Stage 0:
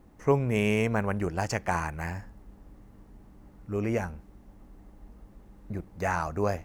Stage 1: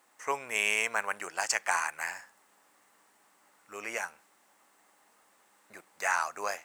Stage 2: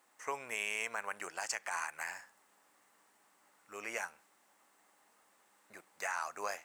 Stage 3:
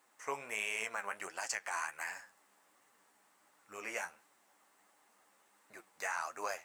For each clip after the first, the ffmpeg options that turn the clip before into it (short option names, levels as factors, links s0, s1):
-af "highpass=1200,equalizer=f=8100:w=2.6:g=8.5,volume=1.78"
-af "alimiter=limit=0.0944:level=0:latency=1:release=99,volume=0.631"
-af "flanger=delay=6.3:depth=8.9:regen=37:speed=1.4:shape=triangular,volume=1.5"